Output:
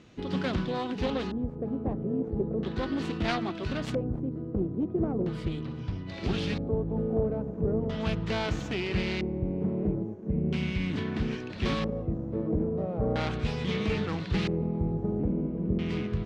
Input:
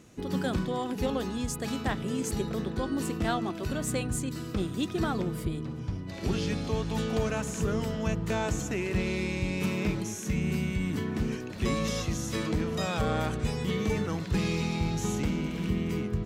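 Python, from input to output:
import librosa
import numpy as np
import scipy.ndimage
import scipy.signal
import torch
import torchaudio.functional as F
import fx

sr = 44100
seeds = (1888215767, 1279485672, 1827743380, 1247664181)

y = fx.self_delay(x, sr, depth_ms=0.21)
y = fx.filter_lfo_lowpass(y, sr, shape='square', hz=0.38, low_hz=510.0, high_hz=3800.0, q=1.4)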